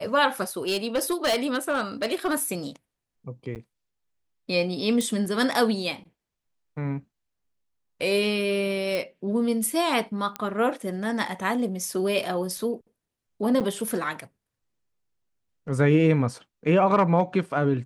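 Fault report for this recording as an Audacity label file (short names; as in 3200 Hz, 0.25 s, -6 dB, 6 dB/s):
0.670000	2.340000	clipped -19.5 dBFS
3.550000	3.560000	gap 9 ms
5.010000	5.010000	pop
8.950000	8.950000	pop -15 dBFS
10.360000	10.360000	pop -14 dBFS
13.600000	13.610000	gap 7.6 ms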